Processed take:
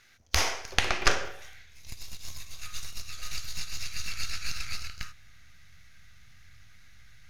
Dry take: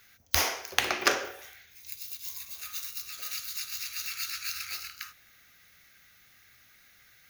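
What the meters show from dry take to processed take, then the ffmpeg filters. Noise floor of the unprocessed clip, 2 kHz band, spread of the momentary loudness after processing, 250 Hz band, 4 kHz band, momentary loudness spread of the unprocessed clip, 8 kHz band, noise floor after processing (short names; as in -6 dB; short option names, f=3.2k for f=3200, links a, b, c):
-60 dBFS, 0.0 dB, 18 LU, -0.5 dB, 0.0 dB, 16 LU, -1.0 dB, -52 dBFS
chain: -af "aeval=exprs='if(lt(val(0),0),0.447*val(0),val(0))':c=same,asubboost=boost=9.5:cutoff=120,lowpass=8.1k,volume=3dB"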